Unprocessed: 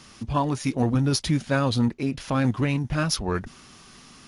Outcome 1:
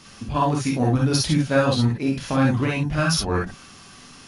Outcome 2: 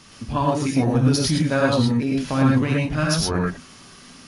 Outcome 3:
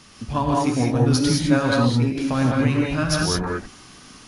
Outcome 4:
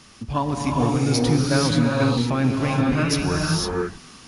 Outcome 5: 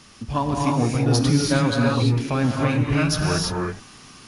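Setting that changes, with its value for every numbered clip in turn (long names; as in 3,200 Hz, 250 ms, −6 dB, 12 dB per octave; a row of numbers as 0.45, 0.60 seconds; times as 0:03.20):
reverb whose tail is shaped and stops, gate: 80, 140, 230, 530, 360 milliseconds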